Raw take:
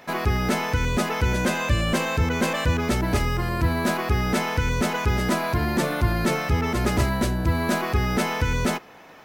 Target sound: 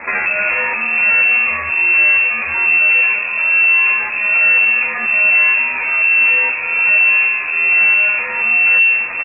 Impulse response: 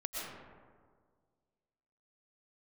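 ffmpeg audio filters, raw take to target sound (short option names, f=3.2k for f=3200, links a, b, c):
-filter_complex "[0:a]bandreject=f=60:t=h:w=6,bandreject=f=120:t=h:w=6,bandreject=f=180:t=h:w=6,bandreject=f=240:t=h:w=6,aeval=exprs='(tanh(22.4*val(0)+0.25)-tanh(0.25))/22.4':c=same,acompressor=threshold=-40dB:ratio=16,acrusher=bits=6:mix=0:aa=0.5,acontrast=69,asplit=2[a][b];[1:a]atrim=start_sample=2205,asetrate=27342,aresample=44100[c];[b][c]afir=irnorm=-1:irlink=0,volume=-10dB[d];[a][d]amix=inputs=2:normalize=0,lowpass=f=2.3k:t=q:w=0.5098,lowpass=f=2.3k:t=q:w=0.6013,lowpass=f=2.3k:t=q:w=0.9,lowpass=f=2.3k:t=q:w=2.563,afreqshift=-2700,alimiter=level_in=21.5dB:limit=-1dB:release=50:level=0:latency=1,asplit=2[e][f];[f]adelay=10.2,afreqshift=-1.2[g];[e][g]amix=inputs=2:normalize=1,volume=-3dB"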